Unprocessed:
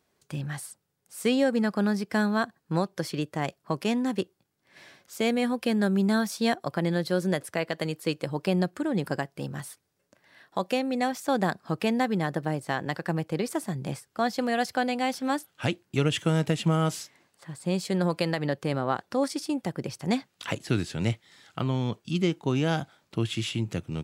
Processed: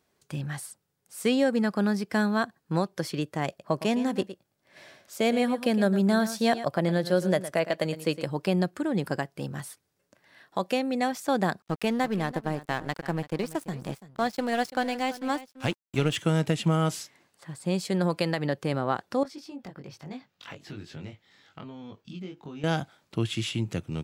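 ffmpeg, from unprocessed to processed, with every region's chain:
-filter_complex "[0:a]asettb=1/sr,asplit=3[a][b][c];[a]atrim=end=3.484[d];[b]atrim=start=3.48:end=8.23,asetpts=PTS-STARTPTS,afade=t=in:d=0.004:c=qsin,afade=t=out:st=4.746:d=0.004:c=qsin,equalizer=f=610:t=o:w=0.39:g=7,aecho=1:1:112:0.224,atrim=end_sample=209475[e];[c]atrim=start=8.226[f];[d][e]acrossfade=d=0.004:c1=hsin:c2=qsin[g];[g][f]acrossfade=d=0.004:c1=qsin:c2=hsin,asettb=1/sr,asplit=3[h][i][j];[h]atrim=end=11.624[k];[i]atrim=start=11.62:end=16.16,asetpts=PTS-STARTPTS,afade=t=in:d=0.004:c=qsin,afade=t=out:st=4.536:d=0.004:c=qsin,aeval=exprs='sgn(val(0))*max(abs(val(0))-0.01,0)':c=same,aecho=1:1:337:0.158,atrim=end_sample=200214[l];[j]atrim=start=16.156[m];[k][l]acrossfade=d=0.004:c1=hsin:c2=qsin[n];[n][m]acrossfade=d=0.004:c1=qsin:c2=hsin,asettb=1/sr,asplit=3[o][p][q];[o]atrim=end=19.234[r];[p]atrim=start=19.23:end=22.64,asetpts=PTS-STARTPTS,afade=t=in:d=0.004:c=qsin,afade=t=out:st=3.406:d=0.004:c=qsin,acompressor=threshold=-36dB:ratio=3:attack=3.2:release=140:knee=1:detection=peak,flanger=delay=19.5:depth=2.3:speed=1.2,equalizer=f=9.5k:w=1.2:g=-14[s];[q]atrim=start=22.636[t];[r][s]acrossfade=d=0.004:c1=hsin:c2=qsin[u];[u][t]acrossfade=d=0.004:c1=qsin:c2=hsin"

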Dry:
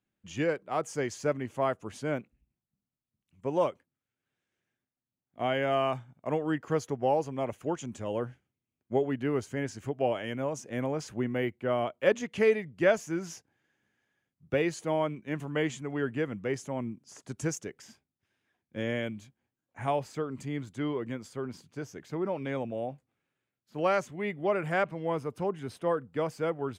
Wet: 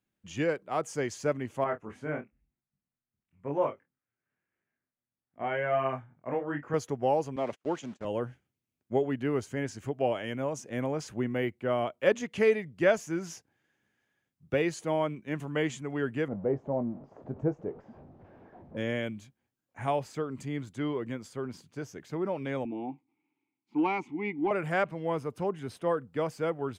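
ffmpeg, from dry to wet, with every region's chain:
-filter_complex "[0:a]asettb=1/sr,asplit=3[a][b][c];[a]atrim=end=1.644[d];[b]atrim=start=1.64:end=6.74,asetpts=PTS-STARTPTS,afade=t=in:d=0.004:c=qsin,afade=t=out:st=5.096:d=0.004:c=qsin,highshelf=f=2.8k:t=q:w=1.5:g=-11.5,flanger=delay=20:depth=5.5:speed=1,asplit=2[e][f];[f]adelay=28,volume=-10dB[g];[e][g]amix=inputs=2:normalize=0,atrim=end_sample=224910[h];[c]atrim=start=6.736[i];[d][h]acrossfade=d=0.004:c1=hsin:c2=qsin[j];[j][i]acrossfade=d=0.004:c1=qsin:c2=hsin,asettb=1/sr,asplit=3[k][l][m];[k]atrim=end=7.364[n];[l]atrim=start=7.36:end=8.05,asetpts=PTS-STARTPTS,afade=t=in:d=0.004:c=qsin,afade=t=out:st=0.686:d=0.004:c=qsin,aeval=exprs='val(0)+0.5*0.00562*sgn(val(0))':c=same,highpass=190,lowpass=5.3k,agate=range=-40dB:threshold=-44dB:ratio=16:release=100:detection=peak[o];[m]atrim=start=8.046[p];[n][o]acrossfade=d=0.004:c1=hsin:c2=qsin[q];[q][p]acrossfade=d=0.004:c1=qsin:c2=hsin,asettb=1/sr,asplit=3[r][s][t];[r]atrim=end=16.284[u];[s]atrim=start=16.28:end=18.77,asetpts=PTS-STARTPTS,afade=t=in:d=0.004:c=qsin,afade=t=out:st=2.486:d=0.004:c=qsin,aeval=exprs='val(0)+0.5*0.00596*sgn(val(0))':c=same,lowpass=f=680:t=q:w=1.8,asplit=2[v][w];[w]adelay=21,volume=-11.5dB[x];[v][x]amix=inputs=2:normalize=0,atrim=end_sample=109809[y];[t]atrim=start=18.766[z];[u][y]acrossfade=d=0.004:c1=hsin:c2=qsin[aa];[aa][z]acrossfade=d=0.004:c1=qsin:c2=hsin,asettb=1/sr,asplit=3[ab][ac][ad];[ab]atrim=end=22.654[ae];[ac]atrim=start=22.65:end=24.51,asetpts=PTS-STARTPTS,afade=t=in:d=0.004:c=qsin,afade=t=out:st=1.856:d=0.004:c=qsin,asplit=3[af][ag][ah];[af]bandpass=f=300:t=q:w=8,volume=0dB[ai];[ag]bandpass=f=870:t=q:w=8,volume=-6dB[aj];[ah]bandpass=f=2.24k:t=q:w=8,volume=-9dB[ak];[ai][aj][ak]amix=inputs=3:normalize=0,acontrast=44,aeval=exprs='0.112*sin(PI/2*1.78*val(0)/0.112)':c=same[al];[ad]atrim=start=24.506[am];[ae][al]acrossfade=d=0.004:c1=hsin:c2=qsin[an];[an][am]acrossfade=d=0.004:c1=qsin:c2=hsin"

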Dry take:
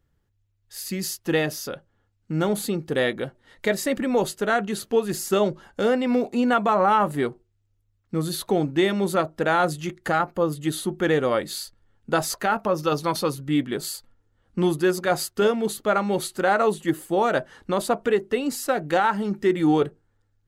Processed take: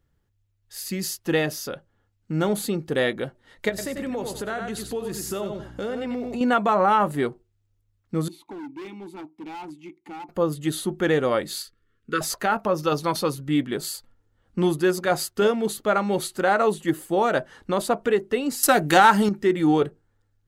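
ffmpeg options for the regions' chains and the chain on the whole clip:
-filter_complex "[0:a]asettb=1/sr,asplit=3[a][b][c];[a]atrim=end=3.694[d];[b]atrim=start=3.69:end=6.41,asetpts=PTS-STARTPTS,afade=t=in:d=0.004:c=qsin,afade=t=out:st=2.716:d=0.004:c=qsin,aeval=exprs='val(0)+0.00891*(sin(2*PI*60*n/s)+sin(2*PI*2*60*n/s)/2+sin(2*PI*3*60*n/s)/3+sin(2*PI*4*60*n/s)/4+sin(2*PI*5*60*n/s)/5)':c=same,aecho=1:1:93|186|279:0.422|0.0675|0.0108,atrim=end_sample=119952,acompressor=threshold=-28dB:ratio=3:attack=3.2:release=140:knee=1:detection=peak[e];[c]atrim=start=6.406[f];[d][e]acrossfade=d=0.004:c1=hsin:c2=qsin[g];[g][f]acrossfade=d=0.004:c1=qsin:c2=hsin,asettb=1/sr,asplit=3[h][i][j];[h]atrim=end=8.284[k];[i]atrim=start=8.28:end=10.29,asetpts=PTS-STARTPTS,afade=t=in:d=0.004:c=qsin,afade=t=out:st=2.006:d=0.004:c=qsin,asplit=3[l][m][n];[l]bandpass=f=300:t=q:w=8,volume=0dB[o];[m]bandpass=f=870:t=q:w=8,volume=-6dB[p];[n]bandpass=f=2.24k:t=q:w=8,volume=-9dB[q];[o][p][q]amix=inputs=3:normalize=0,equalizer=f=12k:w=0.39:g=13.5,asoftclip=type=hard:threshold=-34dB[r];[j]atrim=start=10.286[s];[k][r]acrossfade=d=0.004:c1=hsin:c2=qsin[t];[t][s]acrossfade=d=0.004:c1=qsin:c2=hsin,asettb=1/sr,asplit=3[u][v][w];[u]atrim=end=11.624[x];[v]atrim=start=11.62:end=12.21,asetpts=PTS-STARTPTS,afade=t=in:d=0.004:c=qsin,afade=t=out:st=0.586:d=0.004:c=qsin,asuperstop=centerf=730:order=12:qfactor=1.2,bass=f=250:g=-7,treble=f=4k:g=-6[y];[w]atrim=start=12.206[z];[x][y]acrossfade=d=0.004:c1=hsin:c2=qsin[aa];[aa][z]acrossfade=d=0.004:c1=qsin:c2=hsin,asettb=1/sr,asplit=3[ab][ac][ad];[ab]atrim=end=18.634[ae];[ac]atrim=start=18.63:end=19.29,asetpts=PTS-STARTPTS,afade=t=in:d=0.004:c=qsin,afade=t=out:st=0.656:d=0.004:c=qsin,highshelf=f=4.8k:g=12,bandreject=f=510:w=8,acontrast=73[af];[ad]atrim=start=19.286[ag];[ae][af]acrossfade=d=0.004:c1=hsin:c2=qsin[ah];[ah][ag]acrossfade=d=0.004:c1=qsin:c2=hsin"

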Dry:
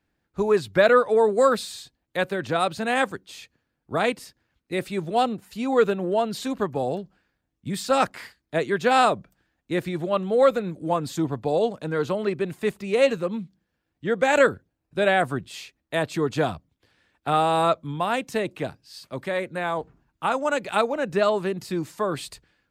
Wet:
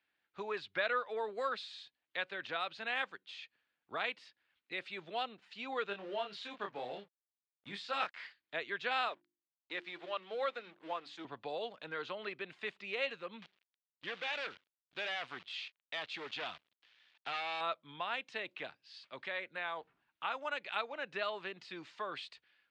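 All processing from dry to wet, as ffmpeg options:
-filter_complex "[0:a]asettb=1/sr,asplit=3[a][b][c];[a]atrim=end=5.864[d];[b]atrim=start=5.86:end=8.21,asetpts=PTS-STARTPTS,afade=t=in:d=0.004:c=qsin,afade=t=out:st=2.346:d=0.004:c=qsin,aeval=exprs='sgn(val(0))*max(abs(val(0))-0.00355,0)':c=same,asplit=2[e][f];[f]adelay=25,volume=-4dB[g];[e][g]amix=inputs=2:normalize=0,atrim=end_sample=103635[h];[c]atrim=start=8.206[i];[d][h]acrossfade=d=0.004:c1=hsin:c2=qsin[j];[j][i]acrossfade=d=0.004:c1=qsin:c2=hsin,asettb=1/sr,asplit=3[k][l][m];[k]atrim=end=9.084[n];[l]atrim=start=9.08:end=11.25,asetpts=PTS-STARTPTS,afade=t=in:d=0.004:c=qsin,afade=t=out:st=2.166:d=0.004:c=qsin,highpass=250,aeval=exprs='sgn(val(0))*max(abs(val(0))-0.00501,0)':c=same,bandreject=f=50:t=h:w=6,bandreject=f=100:t=h:w=6,bandreject=f=150:t=h:w=6,bandreject=f=200:t=h:w=6,bandreject=f=250:t=h:w=6,bandreject=f=300:t=h:w=6,bandreject=f=350:t=h:w=6[o];[m]atrim=start=11.246[p];[n][o]acrossfade=d=0.004:c1=hsin:c2=qsin[q];[q][p]acrossfade=d=0.004:c1=qsin:c2=hsin,asettb=1/sr,asplit=3[r][s][t];[r]atrim=end=13.424[u];[s]atrim=start=13.42:end=17.61,asetpts=PTS-STARTPTS,afade=t=in:d=0.004:c=qsin,afade=t=out:st=4.186:d=0.004:c=qsin,acrusher=bits=8:dc=4:mix=0:aa=0.000001,equalizer=f=3.5k:t=o:w=1.7:g=5,asoftclip=type=hard:threshold=-22dB[v];[t]atrim=start=17.606[w];[u][v]acrossfade=d=0.004:c1=hsin:c2=qsin[x];[x][w]acrossfade=d=0.004:c1=qsin:c2=hsin,aderivative,acompressor=threshold=-56dB:ratio=1.5,lowpass=f=3.3k:w=0.5412,lowpass=f=3.3k:w=1.3066,volume=10dB"

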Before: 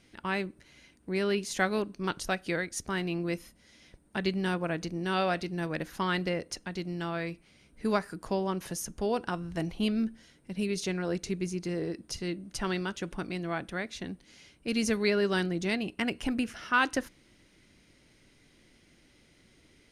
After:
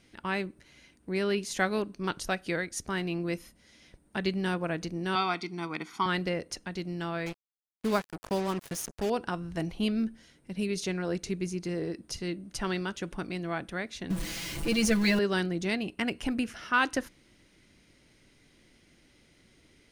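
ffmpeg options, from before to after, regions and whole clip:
-filter_complex "[0:a]asettb=1/sr,asplit=3[a][b][c];[a]atrim=end=5.154[d];[b]atrim=start=5.15:end=6.06,asetpts=PTS-STARTPTS,afade=t=in:d=0.004:c=qsin,afade=t=out:st=0.906:d=0.004:c=qsin,highpass=300,lowpass=7k,aecho=1:1:0.9:0.92,atrim=end_sample=40131[e];[c]atrim=start=6.056[f];[d][e]acrossfade=d=0.004:c1=hsin:c2=qsin[g];[g][f]acrossfade=d=0.004:c1=qsin:c2=hsin,asettb=1/sr,asplit=3[h][i][j];[h]atrim=end=7.264[k];[i]atrim=start=7.26:end=9.1,asetpts=PTS-STARTPTS,afade=t=in:d=0.004:c=qsin,afade=t=out:st=1.836:d=0.004:c=qsin,agate=range=-33dB:threshold=-49dB:ratio=3:release=100:detection=peak,acrusher=bits=5:mix=0:aa=0.5[l];[j]atrim=start=9.096[m];[k][l]acrossfade=d=0.004:c1=hsin:c2=qsin[n];[n][m]acrossfade=d=0.004:c1=qsin:c2=hsin,asettb=1/sr,asplit=3[o][p][q];[o]atrim=end=14.104[r];[p]atrim=start=14.1:end=15.19,asetpts=PTS-STARTPTS,afade=t=in:d=0.004:c=qsin,afade=t=out:st=1.086:d=0.004:c=qsin,aeval=exprs='val(0)+0.5*0.0168*sgn(val(0))':c=same,lowshelf=f=110:g=9.5,aecho=1:1:6:0.91,atrim=end_sample=48069[s];[q]atrim=start=15.186[t];[r][s]acrossfade=d=0.004:c1=hsin:c2=qsin[u];[u][t]acrossfade=d=0.004:c1=qsin:c2=hsin"

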